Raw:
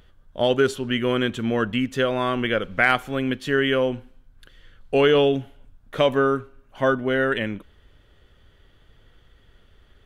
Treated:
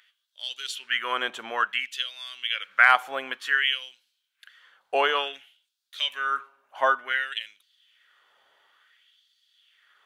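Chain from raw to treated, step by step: LFO high-pass sine 0.56 Hz 770–4400 Hz; gain -2 dB

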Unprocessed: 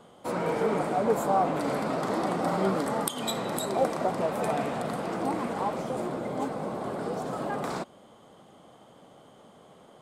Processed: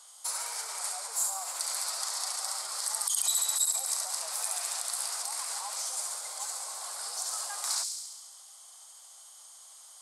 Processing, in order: high shelf 3400 Hz +11.5 dB; on a send: thin delay 69 ms, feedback 69%, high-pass 4700 Hz, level -3 dB; on the sum: limiter -22 dBFS, peak gain reduction 20 dB; HPF 860 Hz 24 dB/oct; band shelf 6900 Hz +14.5 dB; gain -6 dB

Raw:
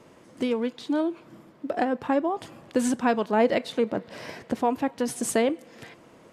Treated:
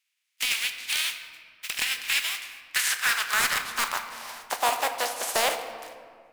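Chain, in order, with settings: spectral contrast lowered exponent 0.31; gate -45 dBFS, range -25 dB; high-pass sweep 2400 Hz -> 660 Hz, 2.21–4.92; wavefolder -12.5 dBFS; reverb RT60 2.1 s, pre-delay 5 ms, DRR 7 dB; gain -2.5 dB

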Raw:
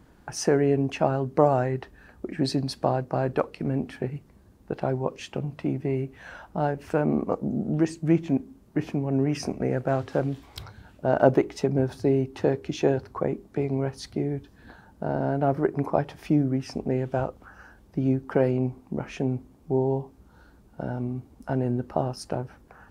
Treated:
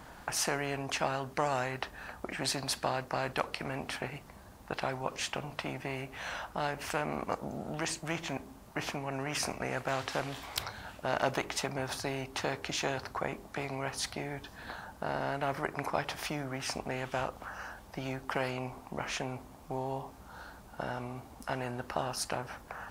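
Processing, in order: resonant low shelf 520 Hz -8.5 dB, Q 1.5; spectral compressor 2:1; gain -3.5 dB

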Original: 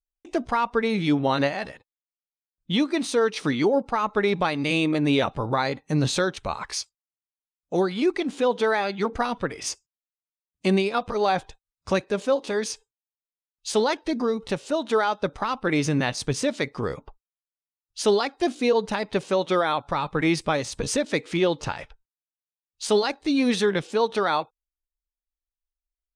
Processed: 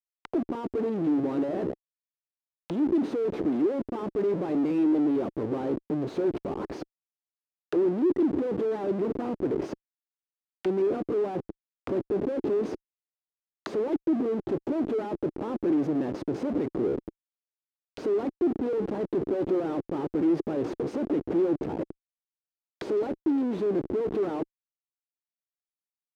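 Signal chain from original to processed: Schmitt trigger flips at -36 dBFS; auto-wah 340–4100 Hz, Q 3, down, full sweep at -30.5 dBFS; gain +6.5 dB

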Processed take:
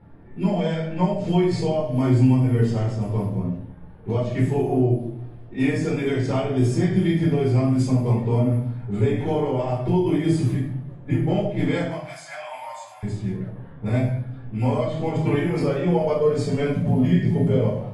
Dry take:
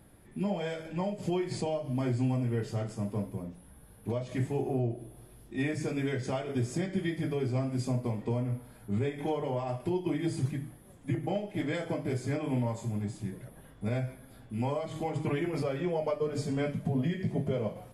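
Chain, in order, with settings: bin magnitudes rounded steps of 15 dB; low-pass opened by the level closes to 1700 Hz, open at -26.5 dBFS; 11.84–13.03 elliptic high-pass 660 Hz, stop band 40 dB; shoebox room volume 490 m³, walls furnished, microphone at 4.3 m; gain +2.5 dB

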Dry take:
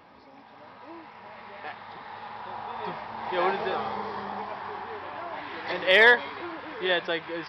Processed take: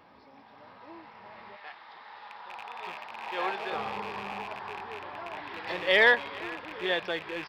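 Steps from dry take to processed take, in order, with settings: rattling part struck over -48 dBFS, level -26 dBFS; 1.55–3.71 HPF 1200 Hz -> 550 Hz 6 dB/oct; feedback echo 0.425 s, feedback 54%, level -22 dB; gain -3.5 dB

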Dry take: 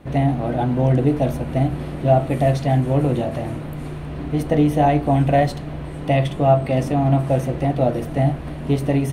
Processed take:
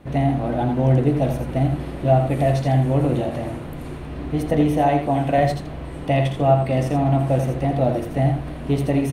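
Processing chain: 4.79–5.38 low shelf 120 Hz -11 dB; echo 83 ms -7 dB; gain -1.5 dB

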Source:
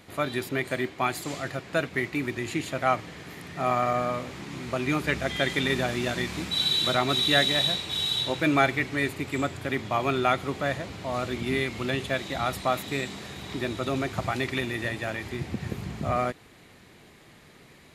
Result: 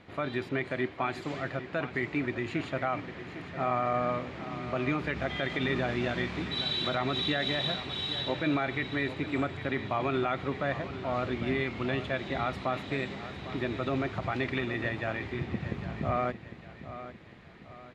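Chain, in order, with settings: LPF 3000 Hz 12 dB/oct; limiter -18 dBFS, peak gain reduction 10 dB; feedback echo 0.803 s, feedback 42%, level -13 dB; gain -1.5 dB

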